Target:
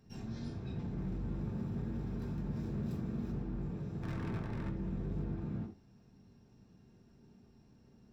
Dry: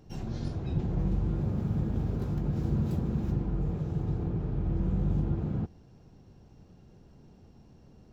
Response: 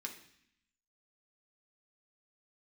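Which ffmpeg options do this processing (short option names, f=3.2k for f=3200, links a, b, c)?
-filter_complex "[0:a]volume=27dB,asoftclip=hard,volume=-27dB,asettb=1/sr,asplit=3[a][b][c];[a]atrim=end=4.024[d];[b]atrim=start=4.02:end=4.69,asetpts=PTS-STARTPTS,afade=t=in:d=0.004:c=qsin,afade=t=out:st=0.666:d=0.004:c=qsin,aeval=exprs='0.0447*(cos(1*acos(clip(val(0)/0.0447,-1,1)))-cos(1*PI/2))+0.00891*(cos(5*acos(clip(val(0)/0.0447,-1,1)))-cos(5*PI/2))+0.00891*(cos(6*acos(clip(val(0)/0.0447,-1,1)))-cos(6*PI/2))':c=same[e];[c]atrim=start=4.686[f];[d][e]acrossfade=d=0.004:c1=hsin:c2=qsin[g];[g][f]acrossfade=d=0.004:c1=qsin:c2=hsin[h];[1:a]atrim=start_sample=2205,atrim=end_sample=3969[i];[h][i]afir=irnorm=-1:irlink=0,volume=-3.5dB"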